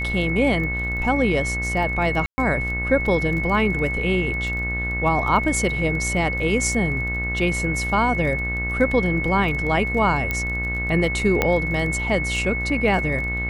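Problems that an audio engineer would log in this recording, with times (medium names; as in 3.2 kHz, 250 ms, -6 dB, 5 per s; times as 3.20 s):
buzz 60 Hz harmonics 36 -28 dBFS
crackle 21 per s -29 dBFS
whine 2.2 kHz -25 dBFS
2.26–2.38 s: dropout 120 ms
10.31 s: pop -10 dBFS
11.42 s: pop -5 dBFS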